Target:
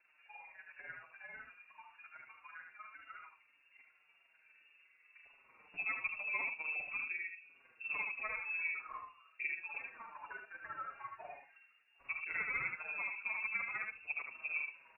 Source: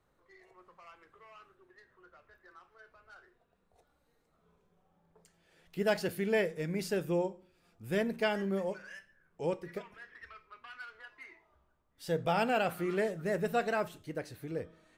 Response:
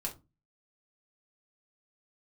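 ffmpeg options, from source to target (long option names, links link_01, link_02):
-filter_complex "[0:a]asettb=1/sr,asplit=3[link_01][link_02][link_03];[link_01]atrim=end=5.924[link_04];[link_02]atrim=start=5.92:end=6.74,asetpts=PTS-STARTPTS,afade=type=in:duration=0.004:curve=qsin,afade=type=out:start_time=0.816:duration=0.004:curve=qsin,lowshelf=frequency=210:gain=11.5[link_05];[link_03]atrim=start=6.736[link_06];[link_04][link_05]acrossfade=duration=0.004:curve1=hsin:curve2=qsin[link_07];[link_07][link_06]acrossfade=duration=0.004:curve1=qsin:curve2=hsin,acompressor=threshold=-46dB:ratio=2.5,tremolo=f=20:d=0.71,asplit=2[link_08][link_09];[link_09]aecho=0:1:76:0.596[link_10];[link_08][link_10]amix=inputs=2:normalize=0,lowpass=frequency=2400:width_type=q:width=0.5098,lowpass=frequency=2400:width_type=q:width=0.6013,lowpass=frequency=2400:width_type=q:width=0.9,lowpass=frequency=2400:width_type=q:width=2.563,afreqshift=-2800,asplit=2[link_11][link_12];[link_12]adelay=5.9,afreqshift=-1.8[link_13];[link_11][link_13]amix=inputs=2:normalize=1,volume=9dB"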